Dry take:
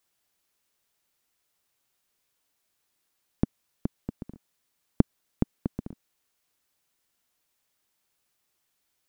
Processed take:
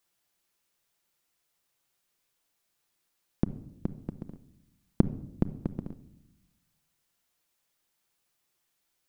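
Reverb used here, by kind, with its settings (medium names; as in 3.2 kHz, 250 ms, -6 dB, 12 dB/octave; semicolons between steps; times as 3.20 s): simulated room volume 2300 m³, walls furnished, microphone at 0.79 m; trim -1.5 dB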